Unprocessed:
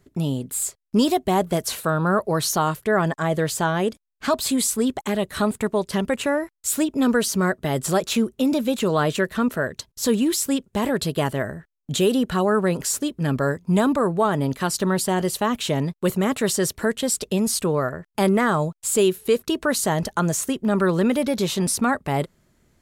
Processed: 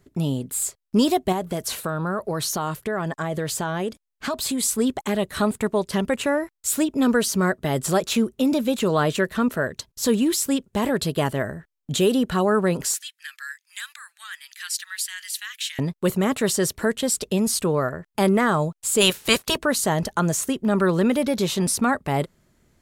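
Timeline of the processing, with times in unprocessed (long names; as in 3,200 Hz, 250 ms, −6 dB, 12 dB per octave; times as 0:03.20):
0:01.32–0:04.63: downward compressor 4 to 1, threshold −22 dBFS
0:12.94–0:15.79: elliptic high-pass filter 1,700 Hz, stop band 80 dB
0:19.00–0:19.56: ceiling on every frequency bin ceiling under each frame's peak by 24 dB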